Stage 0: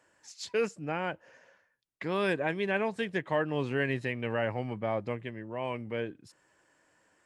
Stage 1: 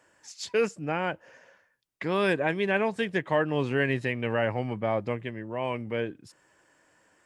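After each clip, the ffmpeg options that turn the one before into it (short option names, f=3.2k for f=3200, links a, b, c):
-af "bandreject=f=4.1k:w=29,volume=4dB"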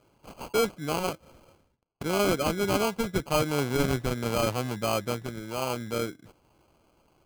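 -af "acrusher=samples=24:mix=1:aa=0.000001"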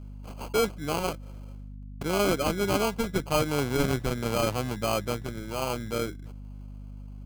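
-af "aeval=exprs='val(0)+0.01*(sin(2*PI*50*n/s)+sin(2*PI*2*50*n/s)/2+sin(2*PI*3*50*n/s)/3+sin(2*PI*4*50*n/s)/4+sin(2*PI*5*50*n/s)/5)':c=same"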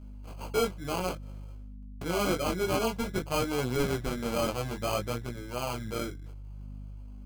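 -af "flanger=delay=16:depth=6.4:speed=0.55"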